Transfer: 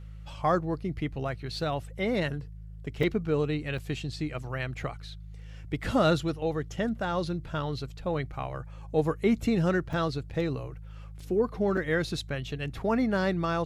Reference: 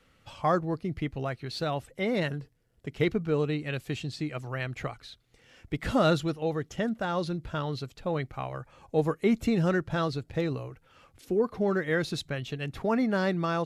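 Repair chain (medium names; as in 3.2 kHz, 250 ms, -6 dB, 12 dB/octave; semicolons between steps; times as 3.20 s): de-hum 53 Hz, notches 3; interpolate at 3.03/3.78/9.93/11.20/11.77 s, 4.3 ms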